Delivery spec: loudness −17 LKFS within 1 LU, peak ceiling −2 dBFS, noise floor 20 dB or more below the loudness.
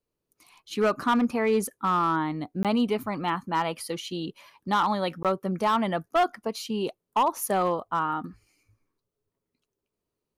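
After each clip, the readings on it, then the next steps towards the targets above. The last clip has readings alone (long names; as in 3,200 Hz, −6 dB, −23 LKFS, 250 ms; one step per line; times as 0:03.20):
share of clipped samples 0.8%; peaks flattened at −17.0 dBFS; number of dropouts 2; longest dropout 17 ms; integrated loudness −27.0 LKFS; sample peak −17.0 dBFS; target loudness −17.0 LKFS
→ clipped peaks rebuilt −17 dBFS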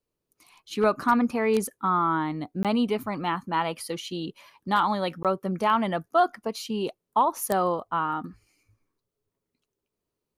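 share of clipped samples 0.0%; number of dropouts 2; longest dropout 17 ms
→ repair the gap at 0:02.63/0:05.23, 17 ms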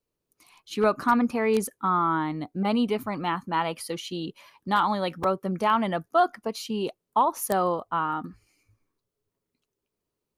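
number of dropouts 0; integrated loudness −26.5 LKFS; sample peak −8.0 dBFS; target loudness −17.0 LKFS
→ level +9.5 dB
brickwall limiter −2 dBFS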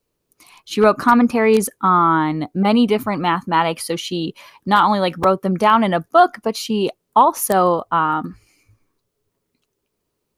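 integrated loudness −17.0 LKFS; sample peak −2.0 dBFS; background noise floor −75 dBFS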